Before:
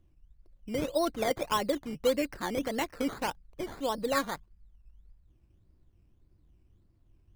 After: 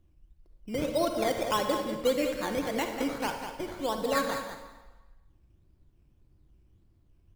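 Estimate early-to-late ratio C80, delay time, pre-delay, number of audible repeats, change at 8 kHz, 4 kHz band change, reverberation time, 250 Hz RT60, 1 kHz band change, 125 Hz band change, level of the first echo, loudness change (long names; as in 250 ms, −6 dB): 5.5 dB, 195 ms, 36 ms, 1, +1.5 dB, +1.5 dB, 1.2 s, 1.1 s, +1.5 dB, +2.0 dB, −9.0 dB, +1.5 dB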